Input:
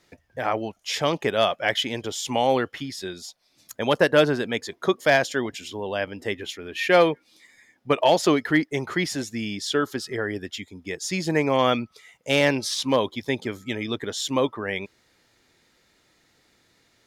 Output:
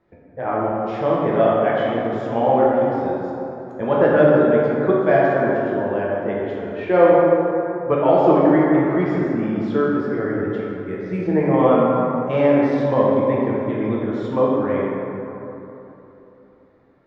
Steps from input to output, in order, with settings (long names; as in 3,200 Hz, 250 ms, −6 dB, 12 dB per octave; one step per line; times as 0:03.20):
0:10.78–0:11.61: bad sample-rate conversion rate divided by 4×, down filtered, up hold
low-pass filter 1,100 Hz 12 dB per octave
dense smooth reverb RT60 3.3 s, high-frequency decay 0.4×, DRR −6 dB